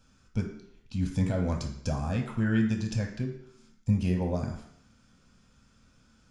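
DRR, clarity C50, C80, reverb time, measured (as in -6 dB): 1.5 dB, 7.0 dB, 10.0 dB, 0.70 s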